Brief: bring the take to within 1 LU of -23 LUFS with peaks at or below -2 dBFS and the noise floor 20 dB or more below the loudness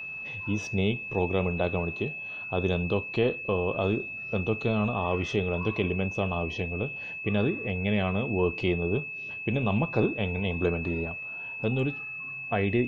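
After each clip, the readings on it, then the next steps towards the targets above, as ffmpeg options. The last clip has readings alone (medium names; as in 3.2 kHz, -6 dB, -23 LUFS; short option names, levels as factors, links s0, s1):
steady tone 2.6 kHz; tone level -35 dBFS; loudness -29.0 LUFS; peak level -11.5 dBFS; loudness target -23.0 LUFS
-> -af "bandreject=f=2600:w=30"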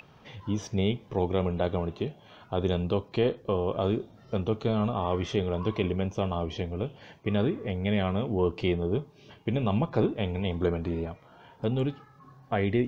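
steady tone not found; loudness -29.5 LUFS; peak level -11.5 dBFS; loudness target -23.0 LUFS
-> -af "volume=2.11"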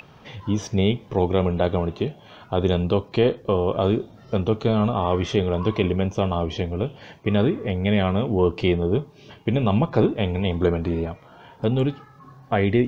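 loudness -23.0 LUFS; peak level -5.0 dBFS; noise floor -49 dBFS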